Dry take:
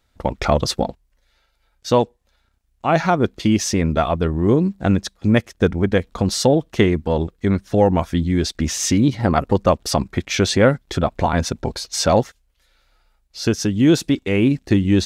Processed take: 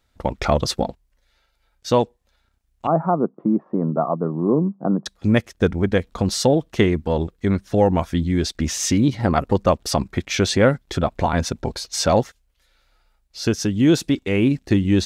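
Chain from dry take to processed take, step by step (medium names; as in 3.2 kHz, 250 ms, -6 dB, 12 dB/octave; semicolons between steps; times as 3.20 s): 2.87–5.06 s: Chebyshev band-pass 150–1200 Hz, order 4; trim -1.5 dB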